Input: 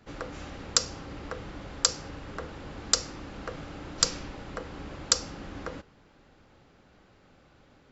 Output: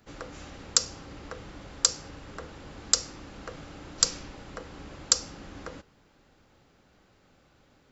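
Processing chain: treble shelf 6.8 kHz +11.5 dB; trim -3.5 dB

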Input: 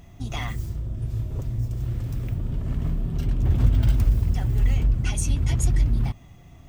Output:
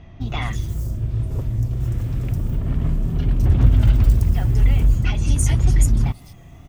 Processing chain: wow and flutter 54 cents; bands offset in time lows, highs 210 ms, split 4.6 kHz; trim +5 dB

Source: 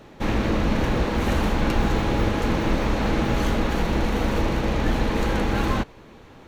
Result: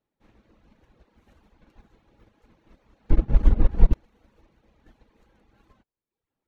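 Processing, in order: reverb removal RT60 0.87 s; 3.10–3.93 s: tilt EQ -4 dB/octave; upward expansion 2.5:1, over -24 dBFS; trim -2.5 dB

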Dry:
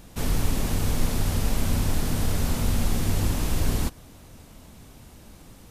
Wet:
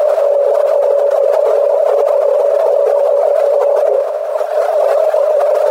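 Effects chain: reverb removal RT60 1.6 s; tilt EQ -3.5 dB/octave; frequency shift +410 Hz; formant shift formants +5 st; level flattener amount 100%; trim -12 dB

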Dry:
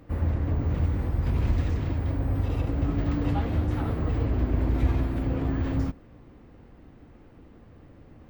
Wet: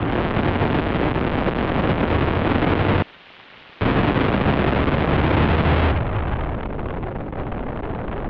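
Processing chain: low-pass sweep 500 Hz -> 180 Hz, 5.08–6.75 s; fuzz box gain 54 dB, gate -52 dBFS; frequency shift +22 Hz; 3.02–3.81 s: integer overflow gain 34 dB; mistuned SSB -210 Hz 280–3600 Hz

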